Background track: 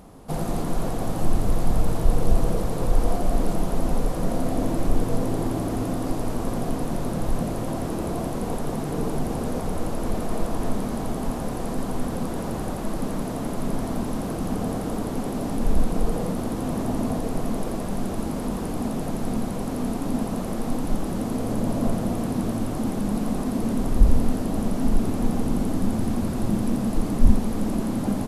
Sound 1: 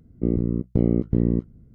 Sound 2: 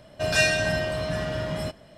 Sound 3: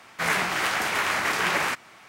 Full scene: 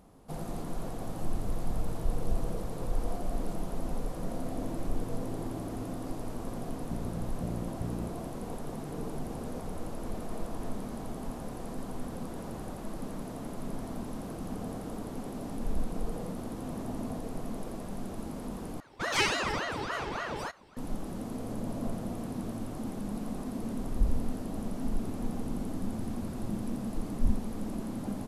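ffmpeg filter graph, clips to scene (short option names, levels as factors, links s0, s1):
-filter_complex "[0:a]volume=0.282[s0];[1:a]equalizer=f=340:w=1.5:g=-13.5[s1];[2:a]aeval=exprs='val(0)*sin(2*PI*760*n/s+760*0.75/3.5*sin(2*PI*3.5*n/s))':c=same[s2];[s0]asplit=2[s3][s4];[s3]atrim=end=18.804[s5];[s2]atrim=end=1.97,asetpts=PTS-STARTPTS,volume=0.668[s6];[s4]atrim=start=20.766[s7];[s1]atrim=end=1.74,asetpts=PTS-STARTPTS,volume=0.237,afade=t=in:d=0.004:c=hsin,afade=t=out:st=1.736:d=0.004:c=hsin,adelay=6680[s8];[s5][s6]acrossfade=d=0.004:c1=hsin:c2=hsin[s9];[s9][s7]acrossfade=d=0.004:c1=hsin:c2=hsin[s10];[s10][s8]amix=inputs=2:normalize=0"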